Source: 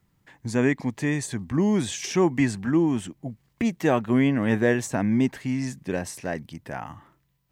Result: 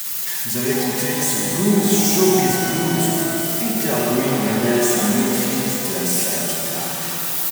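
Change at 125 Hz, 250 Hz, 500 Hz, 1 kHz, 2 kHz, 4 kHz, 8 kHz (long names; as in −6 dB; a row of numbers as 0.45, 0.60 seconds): +3.0, +3.5, +6.0, +8.5, +5.5, +14.5, +17.5 decibels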